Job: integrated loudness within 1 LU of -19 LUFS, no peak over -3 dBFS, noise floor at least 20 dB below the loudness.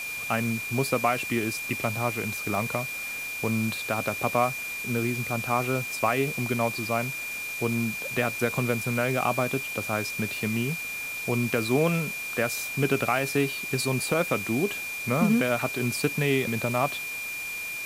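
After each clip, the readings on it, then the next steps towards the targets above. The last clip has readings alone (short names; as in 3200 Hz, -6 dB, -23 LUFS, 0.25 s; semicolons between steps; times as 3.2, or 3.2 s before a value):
steady tone 2400 Hz; tone level -32 dBFS; noise floor -34 dBFS; noise floor target -47 dBFS; loudness -27.0 LUFS; peak -10.0 dBFS; loudness target -19.0 LUFS
-> notch 2400 Hz, Q 30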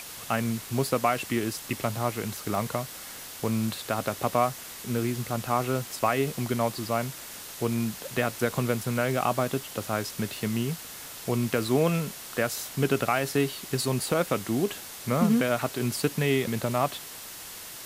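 steady tone none; noise floor -42 dBFS; noise floor target -48 dBFS
-> denoiser 6 dB, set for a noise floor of -42 dBFS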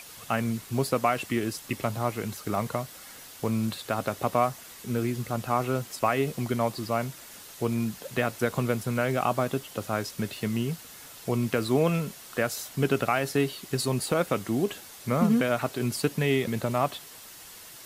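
noise floor -47 dBFS; noise floor target -49 dBFS
-> denoiser 6 dB, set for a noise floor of -47 dBFS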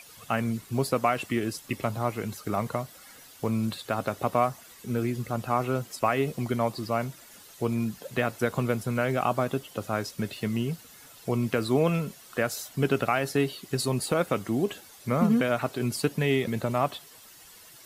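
noise floor -51 dBFS; loudness -28.5 LUFS; peak -10.5 dBFS; loudness target -19.0 LUFS
-> gain +9.5 dB; limiter -3 dBFS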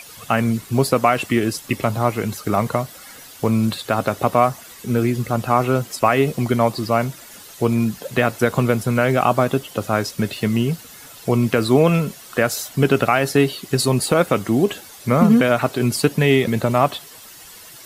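loudness -19.5 LUFS; peak -3.0 dBFS; noise floor -41 dBFS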